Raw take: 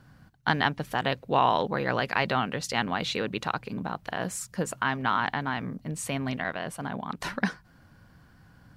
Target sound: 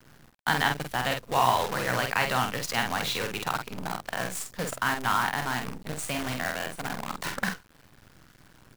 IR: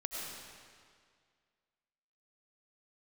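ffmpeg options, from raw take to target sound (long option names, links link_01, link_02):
-filter_complex "[0:a]acrossover=split=140|600|2400[link_01][link_02][link_03][link_04];[link_02]volume=35.5dB,asoftclip=hard,volume=-35.5dB[link_05];[link_01][link_05][link_03][link_04]amix=inputs=4:normalize=0,acrusher=bits=6:dc=4:mix=0:aa=0.000001,asplit=2[link_06][link_07];[link_07]adelay=48,volume=-5dB[link_08];[link_06][link_08]amix=inputs=2:normalize=0"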